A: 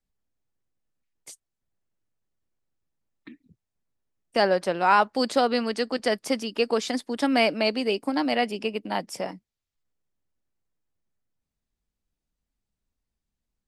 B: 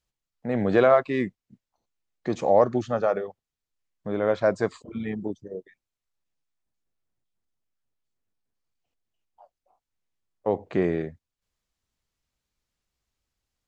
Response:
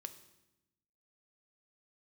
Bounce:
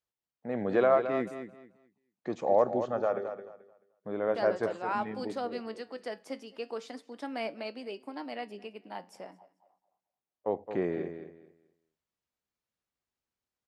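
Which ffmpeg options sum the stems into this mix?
-filter_complex "[0:a]flanger=delay=8.2:depth=3.1:regen=75:speed=0.38:shape=sinusoidal,volume=-8.5dB,asplit=3[link_01][link_02][link_03];[link_02]volume=-9dB[link_04];[link_03]volume=-21.5dB[link_05];[1:a]volume=-4dB,asplit=2[link_06][link_07];[link_07]volume=-9.5dB[link_08];[2:a]atrim=start_sample=2205[link_09];[link_04][link_09]afir=irnorm=-1:irlink=0[link_10];[link_05][link_08]amix=inputs=2:normalize=0,aecho=0:1:217|434|651|868:1|0.24|0.0576|0.0138[link_11];[link_01][link_06][link_10][link_11]amix=inputs=4:normalize=0,highpass=frequency=310:poles=1,highshelf=frequency=2100:gain=-8.5"

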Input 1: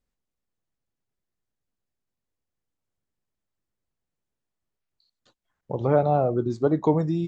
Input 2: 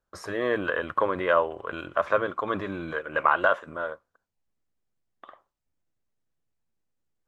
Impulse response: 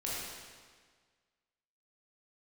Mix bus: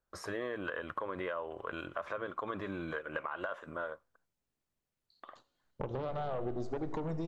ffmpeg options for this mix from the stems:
-filter_complex "[0:a]alimiter=limit=-15dB:level=0:latency=1:release=140,aeval=exprs='0.178*(cos(1*acos(clip(val(0)/0.178,-1,1)))-cos(1*PI/2))+0.0631*(cos(2*acos(clip(val(0)/0.178,-1,1)))-cos(2*PI/2))+0.0112*(cos(6*acos(clip(val(0)/0.178,-1,1)))-cos(6*PI/2))':channel_layout=same,adelay=100,volume=-4dB,asplit=2[link_01][link_02];[link_02]volume=-14dB[link_03];[1:a]alimiter=limit=-16.5dB:level=0:latency=1:release=89,volume=-4dB[link_04];[2:a]atrim=start_sample=2205[link_05];[link_03][link_05]afir=irnorm=-1:irlink=0[link_06];[link_01][link_04][link_06]amix=inputs=3:normalize=0,acompressor=threshold=-34dB:ratio=6"

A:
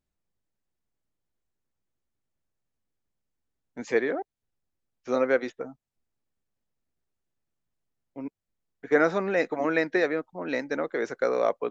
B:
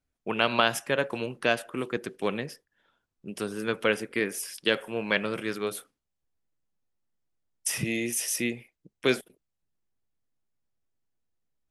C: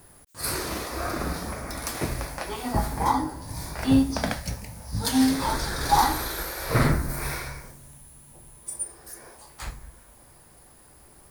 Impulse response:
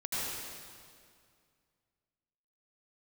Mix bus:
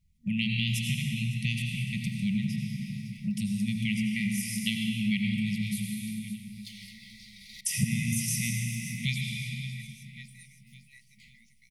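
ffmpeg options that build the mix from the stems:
-filter_complex "[0:a]adelay=400,volume=-19.5dB[link_01];[1:a]lowshelf=frequency=270:width_type=q:width=1.5:gain=9.5,volume=2.5dB,asplit=3[link_02][link_03][link_04];[link_03]volume=-4.5dB[link_05];[link_04]volume=-17dB[link_06];[2:a]acrossover=split=500 4100:gain=0.0794 1 0.158[link_07][link_08][link_09];[link_07][link_08][link_09]amix=inputs=3:normalize=0,adelay=1600,volume=-11dB,asplit=3[link_10][link_11][link_12];[link_10]atrim=end=7.61,asetpts=PTS-STARTPTS,afade=type=out:start_time=7.606:duration=0.004:curve=hsin[link_13];[link_11]atrim=start=7.61:end=8.28,asetpts=PTS-STARTPTS,volume=0[link_14];[link_12]atrim=start=8.28,asetpts=PTS-STARTPTS,afade=type=in:duration=0.004:curve=hsin[link_15];[link_13][link_14][link_15]concat=n=3:v=0:a=1,asplit=3[link_16][link_17][link_18];[link_17]volume=-22.5dB[link_19];[link_18]volume=-15.5dB[link_20];[3:a]atrim=start_sample=2205[link_21];[link_05][link_19]amix=inputs=2:normalize=0[link_22];[link_22][link_21]afir=irnorm=-1:irlink=0[link_23];[link_06][link_20]amix=inputs=2:normalize=0,aecho=0:1:557|1114|1671|2228|2785|3342|3899:1|0.47|0.221|0.104|0.0488|0.0229|0.0108[link_24];[link_01][link_02][link_16][link_23][link_24]amix=inputs=5:normalize=0,afftfilt=real='re*(1-between(b*sr/4096,230,1900))':imag='im*(1-between(b*sr/4096,230,1900))':win_size=4096:overlap=0.75,acompressor=threshold=-33dB:ratio=2"

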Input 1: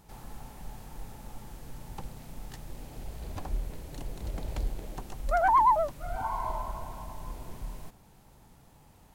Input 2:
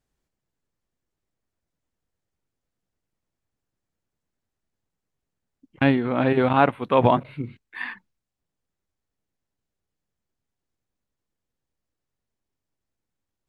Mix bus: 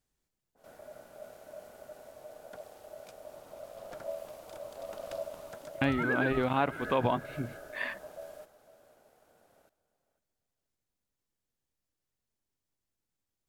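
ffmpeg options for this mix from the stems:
ffmpeg -i stem1.wav -i stem2.wav -filter_complex "[0:a]aeval=exprs='val(0)*sin(2*PI*610*n/s)':channel_layout=same,adynamicequalizer=threshold=0.00631:dfrequency=1600:dqfactor=0.7:tfrequency=1600:tqfactor=0.7:attack=5:release=100:ratio=0.375:range=3:mode=boostabove:tftype=highshelf,adelay=550,volume=-5.5dB,asplit=2[link_01][link_02];[link_02]volume=-16.5dB[link_03];[1:a]highshelf=frequency=3600:gain=7,volume=-5dB[link_04];[link_03]aecho=0:1:502|1004|1506:1|0.2|0.04[link_05];[link_01][link_04][link_05]amix=inputs=3:normalize=0,acompressor=threshold=-28dB:ratio=2" out.wav

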